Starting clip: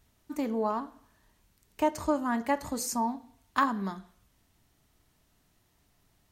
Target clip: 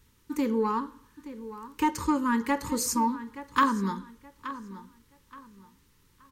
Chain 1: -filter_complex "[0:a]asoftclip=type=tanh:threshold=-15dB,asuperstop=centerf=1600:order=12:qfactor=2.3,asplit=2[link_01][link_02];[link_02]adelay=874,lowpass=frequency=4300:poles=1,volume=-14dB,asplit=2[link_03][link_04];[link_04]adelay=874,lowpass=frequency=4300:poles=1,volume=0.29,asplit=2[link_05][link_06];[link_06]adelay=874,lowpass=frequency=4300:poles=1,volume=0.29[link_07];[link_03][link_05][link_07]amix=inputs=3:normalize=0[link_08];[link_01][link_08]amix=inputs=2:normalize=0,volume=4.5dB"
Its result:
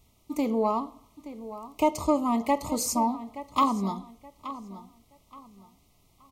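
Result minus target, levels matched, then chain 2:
2,000 Hz band −10.0 dB
-filter_complex "[0:a]asoftclip=type=tanh:threshold=-15dB,asuperstop=centerf=690:order=12:qfactor=2.3,asplit=2[link_01][link_02];[link_02]adelay=874,lowpass=frequency=4300:poles=1,volume=-14dB,asplit=2[link_03][link_04];[link_04]adelay=874,lowpass=frequency=4300:poles=1,volume=0.29,asplit=2[link_05][link_06];[link_06]adelay=874,lowpass=frequency=4300:poles=1,volume=0.29[link_07];[link_03][link_05][link_07]amix=inputs=3:normalize=0[link_08];[link_01][link_08]amix=inputs=2:normalize=0,volume=4.5dB"

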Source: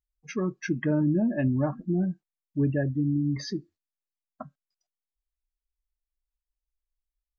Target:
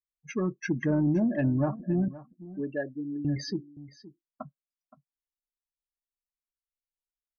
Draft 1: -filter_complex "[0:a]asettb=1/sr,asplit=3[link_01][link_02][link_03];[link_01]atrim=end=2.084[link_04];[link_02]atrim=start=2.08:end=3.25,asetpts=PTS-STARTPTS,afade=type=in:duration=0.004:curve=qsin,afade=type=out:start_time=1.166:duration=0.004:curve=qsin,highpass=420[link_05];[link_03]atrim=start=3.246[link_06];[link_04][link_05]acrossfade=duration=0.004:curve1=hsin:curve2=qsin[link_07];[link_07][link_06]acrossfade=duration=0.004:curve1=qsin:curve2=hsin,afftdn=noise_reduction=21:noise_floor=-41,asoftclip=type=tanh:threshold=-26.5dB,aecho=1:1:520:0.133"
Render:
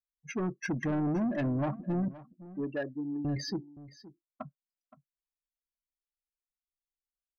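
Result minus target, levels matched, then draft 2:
soft clipping: distortion +15 dB
-filter_complex "[0:a]asettb=1/sr,asplit=3[link_01][link_02][link_03];[link_01]atrim=end=2.084[link_04];[link_02]atrim=start=2.08:end=3.25,asetpts=PTS-STARTPTS,afade=type=in:duration=0.004:curve=qsin,afade=type=out:start_time=1.166:duration=0.004:curve=qsin,highpass=420[link_05];[link_03]atrim=start=3.246[link_06];[link_04][link_05]acrossfade=duration=0.004:curve1=hsin:curve2=qsin[link_07];[link_07][link_06]acrossfade=duration=0.004:curve1=qsin:curve2=hsin,afftdn=noise_reduction=21:noise_floor=-41,asoftclip=type=tanh:threshold=-15dB,aecho=1:1:520:0.133"

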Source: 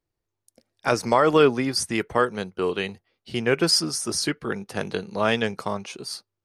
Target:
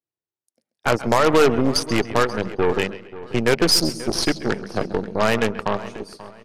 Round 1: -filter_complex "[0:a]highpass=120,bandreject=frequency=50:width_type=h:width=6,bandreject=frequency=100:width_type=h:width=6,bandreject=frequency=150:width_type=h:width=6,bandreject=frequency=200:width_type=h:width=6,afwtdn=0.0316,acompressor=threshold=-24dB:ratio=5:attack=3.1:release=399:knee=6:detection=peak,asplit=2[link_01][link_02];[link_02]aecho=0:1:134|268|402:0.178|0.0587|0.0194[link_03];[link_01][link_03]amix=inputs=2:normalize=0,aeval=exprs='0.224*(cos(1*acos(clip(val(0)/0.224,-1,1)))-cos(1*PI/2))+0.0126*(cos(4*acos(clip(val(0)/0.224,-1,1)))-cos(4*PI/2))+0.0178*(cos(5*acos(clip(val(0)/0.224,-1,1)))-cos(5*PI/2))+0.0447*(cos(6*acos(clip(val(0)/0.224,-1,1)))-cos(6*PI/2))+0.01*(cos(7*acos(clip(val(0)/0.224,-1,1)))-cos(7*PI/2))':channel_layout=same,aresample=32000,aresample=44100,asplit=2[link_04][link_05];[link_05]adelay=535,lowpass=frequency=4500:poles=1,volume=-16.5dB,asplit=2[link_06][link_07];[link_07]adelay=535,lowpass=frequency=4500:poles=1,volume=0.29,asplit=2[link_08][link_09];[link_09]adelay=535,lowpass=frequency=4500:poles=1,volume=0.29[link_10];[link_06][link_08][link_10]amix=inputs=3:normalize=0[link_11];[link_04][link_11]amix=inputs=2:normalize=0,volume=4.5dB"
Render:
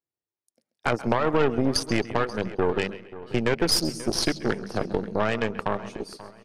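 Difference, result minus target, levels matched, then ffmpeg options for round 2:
downward compressor: peak gain reduction +8 dB
-filter_complex "[0:a]highpass=120,bandreject=frequency=50:width_type=h:width=6,bandreject=frequency=100:width_type=h:width=6,bandreject=frequency=150:width_type=h:width=6,bandreject=frequency=200:width_type=h:width=6,afwtdn=0.0316,acompressor=threshold=-13.5dB:ratio=5:attack=3.1:release=399:knee=6:detection=peak,asplit=2[link_01][link_02];[link_02]aecho=0:1:134|268|402:0.178|0.0587|0.0194[link_03];[link_01][link_03]amix=inputs=2:normalize=0,aeval=exprs='0.224*(cos(1*acos(clip(val(0)/0.224,-1,1)))-cos(1*PI/2))+0.0126*(cos(4*acos(clip(val(0)/0.224,-1,1)))-cos(4*PI/2))+0.0178*(cos(5*acos(clip(val(0)/0.224,-1,1)))-cos(5*PI/2))+0.0447*(cos(6*acos(clip(val(0)/0.224,-1,1)))-cos(6*PI/2))+0.01*(cos(7*acos(clip(val(0)/0.224,-1,1)))-cos(7*PI/2))':channel_layout=same,aresample=32000,aresample=44100,asplit=2[link_04][link_05];[link_05]adelay=535,lowpass=frequency=4500:poles=1,volume=-16.5dB,asplit=2[link_06][link_07];[link_07]adelay=535,lowpass=frequency=4500:poles=1,volume=0.29,asplit=2[link_08][link_09];[link_09]adelay=535,lowpass=frequency=4500:poles=1,volume=0.29[link_10];[link_06][link_08][link_10]amix=inputs=3:normalize=0[link_11];[link_04][link_11]amix=inputs=2:normalize=0,volume=4.5dB"

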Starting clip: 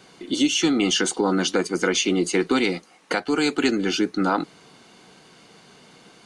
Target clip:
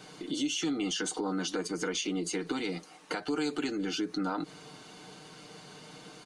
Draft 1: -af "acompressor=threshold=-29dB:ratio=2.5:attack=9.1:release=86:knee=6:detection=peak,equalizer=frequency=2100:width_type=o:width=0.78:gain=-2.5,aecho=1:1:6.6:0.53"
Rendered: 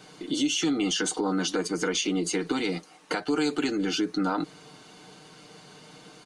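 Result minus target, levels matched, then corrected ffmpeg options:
downward compressor: peak gain reduction −5.5 dB
-af "acompressor=threshold=-38.5dB:ratio=2.5:attack=9.1:release=86:knee=6:detection=peak,equalizer=frequency=2100:width_type=o:width=0.78:gain=-2.5,aecho=1:1:6.6:0.53"

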